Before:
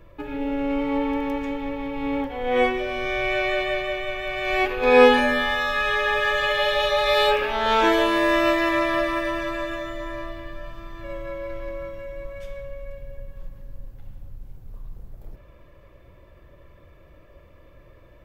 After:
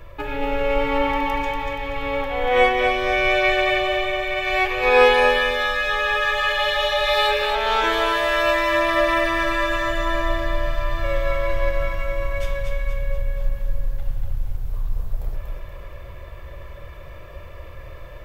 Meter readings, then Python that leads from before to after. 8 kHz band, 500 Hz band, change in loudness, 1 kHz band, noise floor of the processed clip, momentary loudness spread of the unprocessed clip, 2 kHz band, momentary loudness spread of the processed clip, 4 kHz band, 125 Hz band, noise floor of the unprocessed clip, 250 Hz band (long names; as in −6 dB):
+3.5 dB, +1.5 dB, +1.0 dB, +3.5 dB, −37 dBFS, 18 LU, +3.5 dB, 22 LU, +3.5 dB, +10.0 dB, −51 dBFS, −4.0 dB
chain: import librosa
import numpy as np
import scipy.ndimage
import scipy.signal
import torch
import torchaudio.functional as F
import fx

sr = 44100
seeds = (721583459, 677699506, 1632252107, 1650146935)

p1 = fx.rider(x, sr, range_db=10, speed_s=2.0)
p2 = fx.peak_eq(p1, sr, hz=250.0, db=-14.5, octaves=1.1)
p3 = p2 + fx.echo_feedback(p2, sr, ms=238, feedback_pct=45, wet_db=-5.0, dry=0)
y = F.gain(torch.from_numpy(p3), 2.5).numpy()